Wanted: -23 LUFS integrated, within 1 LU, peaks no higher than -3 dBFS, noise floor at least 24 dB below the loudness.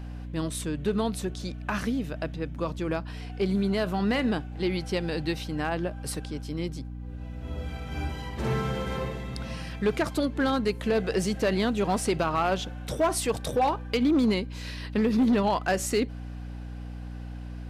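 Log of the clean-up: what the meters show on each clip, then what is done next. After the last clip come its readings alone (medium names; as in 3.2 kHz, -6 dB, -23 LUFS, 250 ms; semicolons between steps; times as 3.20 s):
clipped samples 0.8%; clipping level -18.0 dBFS; hum 60 Hz; highest harmonic 300 Hz; hum level -35 dBFS; loudness -28.5 LUFS; peak level -18.0 dBFS; loudness target -23.0 LUFS
-> clip repair -18 dBFS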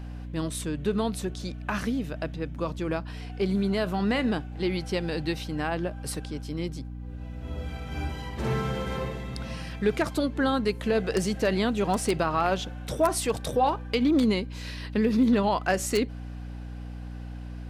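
clipped samples 0.0%; hum 60 Hz; highest harmonic 300 Hz; hum level -35 dBFS
-> hum notches 60/120/180/240/300 Hz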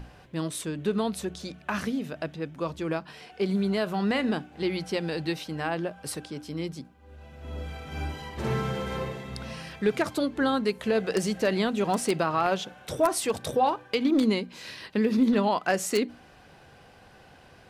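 hum not found; loudness -28.5 LUFS; peak level -9.0 dBFS; loudness target -23.0 LUFS
-> trim +5.5 dB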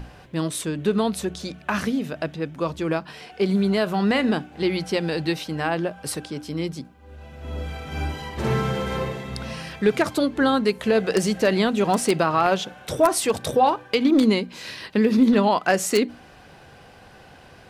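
loudness -23.0 LUFS; peak level -3.5 dBFS; noise floor -48 dBFS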